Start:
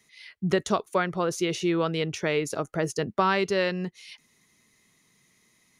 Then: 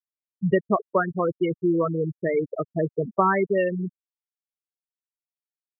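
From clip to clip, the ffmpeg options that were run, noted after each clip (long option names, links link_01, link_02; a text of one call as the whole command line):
ffmpeg -i in.wav -af "afftfilt=real='re*gte(hypot(re,im),0.158)':imag='im*gte(hypot(re,im),0.158)':win_size=1024:overlap=0.75,volume=3.5dB" out.wav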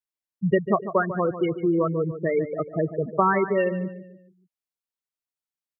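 ffmpeg -i in.wav -filter_complex "[0:a]asplit=2[link_01][link_02];[link_02]adelay=146,lowpass=frequency=2600:poles=1,volume=-11.5dB,asplit=2[link_03][link_04];[link_04]adelay=146,lowpass=frequency=2600:poles=1,volume=0.41,asplit=2[link_05][link_06];[link_06]adelay=146,lowpass=frequency=2600:poles=1,volume=0.41,asplit=2[link_07][link_08];[link_08]adelay=146,lowpass=frequency=2600:poles=1,volume=0.41[link_09];[link_01][link_03][link_05][link_07][link_09]amix=inputs=5:normalize=0" out.wav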